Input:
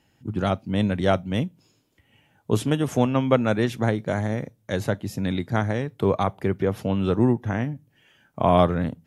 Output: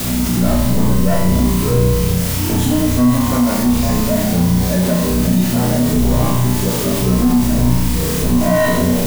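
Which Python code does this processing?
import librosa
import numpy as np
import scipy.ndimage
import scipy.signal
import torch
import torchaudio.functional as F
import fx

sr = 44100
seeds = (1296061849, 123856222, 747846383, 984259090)

y = fx.dmg_wind(x, sr, seeds[0], corner_hz=120.0, level_db=-21.0)
y = fx.low_shelf(y, sr, hz=300.0, db=-10.5)
y = fx.small_body(y, sr, hz=(240.0, 610.0), ring_ms=50, db=15)
y = fx.spec_gate(y, sr, threshold_db=-20, keep='strong')
y = fx.peak_eq(y, sr, hz=860.0, db=-8.0, octaves=1.4)
y = fx.leveller(y, sr, passes=3)
y = fx.rider(y, sr, range_db=10, speed_s=2.0)
y = fx.comb_fb(y, sr, f0_hz=62.0, decay_s=0.64, harmonics='all', damping=0.0, mix_pct=100)
y = fx.echo_pitch(y, sr, ms=123, semitones=-6, count=2, db_per_echo=-6.0)
y = fx.quant_dither(y, sr, seeds[1], bits=6, dither='triangular')
y = fx.room_flutter(y, sr, wall_m=5.7, rt60_s=0.95)
y = fx.env_flatten(y, sr, amount_pct=50)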